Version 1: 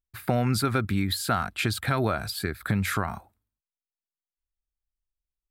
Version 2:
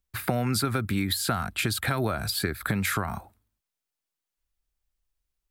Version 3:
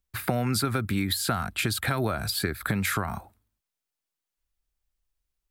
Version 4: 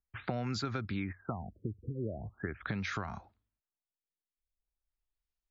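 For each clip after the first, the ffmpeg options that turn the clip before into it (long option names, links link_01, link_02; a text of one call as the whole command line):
ffmpeg -i in.wav -filter_complex "[0:a]acrossover=split=230|7900[link_01][link_02][link_03];[link_01]acompressor=threshold=-38dB:ratio=4[link_04];[link_02]acompressor=threshold=-35dB:ratio=4[link_05];[link_03]acompressor=threshold=-40dB:ratio=4[link_06];[link_04][link_05][link_06]amix=inputs=3:normalize=0,volume=7.5dB" out.wav
ffmpeg -i in.wav -af anull out.wav
ffmpeg -i in.wav -af "afftfilt=real='re*lt(b*sr/1024,480*pow(7400/480,0.5+0.5*sin(2*PI*0.41*pts/sr)))':imag='im*lt(b*sr/1024,480*pow(7400/480,0.5+0.5*sin(2*PI*0.41*pts/sr)))':win_size=1024:overlap=0.75,volume=-9dB" out.wav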